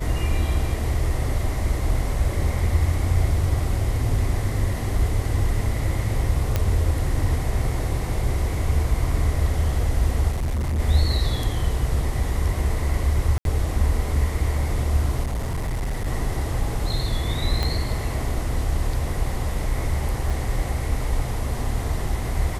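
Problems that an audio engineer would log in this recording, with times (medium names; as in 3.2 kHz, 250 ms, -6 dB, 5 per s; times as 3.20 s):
6.56 s: pop -8 dBFS
10.31–10.80 s: clipped -21 dBFS
13.38–13.45 s: dropout 72 ms
15.24–16.08 s: clipped -22 dBFS
17.63 s: pop -11 dBFS
20.30 s: dropout 4.2 ms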